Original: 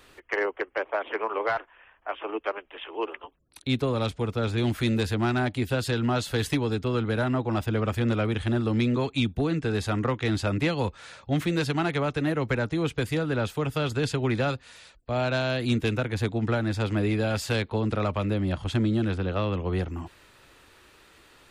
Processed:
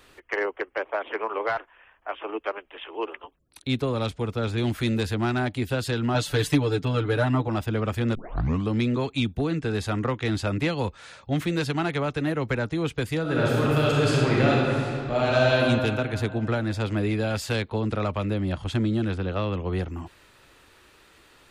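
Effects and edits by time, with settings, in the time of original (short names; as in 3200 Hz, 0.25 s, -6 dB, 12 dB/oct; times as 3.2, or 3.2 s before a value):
6.14–7.48 comb 6.8 ms, depth 91%
8.15 tape start 0.54 s
13.21–15.56 reverb throw, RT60 2.5 s, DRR -5 dB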